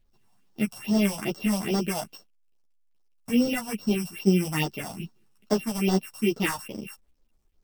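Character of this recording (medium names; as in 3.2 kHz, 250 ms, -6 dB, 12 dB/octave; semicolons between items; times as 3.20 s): a buzz of ramps at a fixed pitch in blocks of 16 samples; phasing stages 4, 2.4 Hz, lowest notch 340–2500 Hz; a quantiser's noise floor 12-bit, dither none; a shimmering, thickened sound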